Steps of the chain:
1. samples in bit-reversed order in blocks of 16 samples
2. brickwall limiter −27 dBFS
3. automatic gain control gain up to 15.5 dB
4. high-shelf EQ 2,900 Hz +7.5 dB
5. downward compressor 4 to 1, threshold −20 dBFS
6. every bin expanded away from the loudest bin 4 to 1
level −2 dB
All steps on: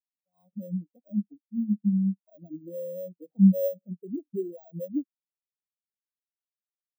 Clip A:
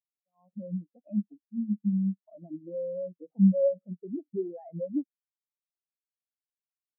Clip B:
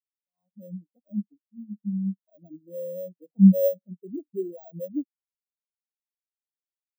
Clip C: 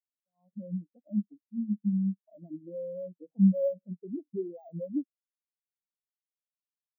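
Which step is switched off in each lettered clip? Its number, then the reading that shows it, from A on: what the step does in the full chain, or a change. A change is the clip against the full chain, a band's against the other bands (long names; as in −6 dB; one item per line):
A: 1, change in integrated loudness −2.0 LU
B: 5, average gain reduction 2.5 dB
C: 4, change in integrated loudness −3.5 LU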